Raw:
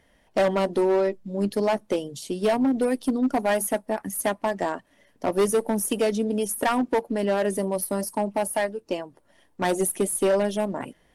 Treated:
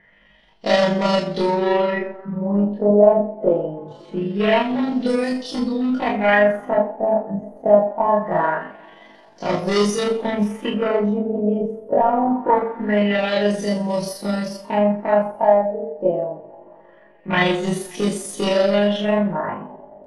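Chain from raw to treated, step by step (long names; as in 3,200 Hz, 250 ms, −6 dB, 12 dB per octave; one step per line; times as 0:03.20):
coupled-rooms reverb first 0.23 s, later 2.3 s, from −28 dB, DRR −5 dB
auto-filter low-pass sine 0.42 Hz 590–5,500 Hz
time stretch by overlap-add 1.8×, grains 88 ms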